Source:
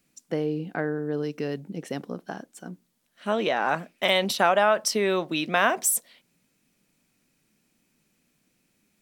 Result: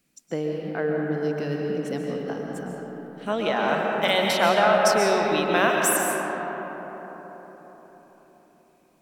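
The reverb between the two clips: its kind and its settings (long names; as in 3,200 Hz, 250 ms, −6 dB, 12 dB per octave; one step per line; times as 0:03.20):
comb and all-pass reverb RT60 4.7 s, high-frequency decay 0.35×, pre-delay 95 ms, DRR −1 dB
level −1 dB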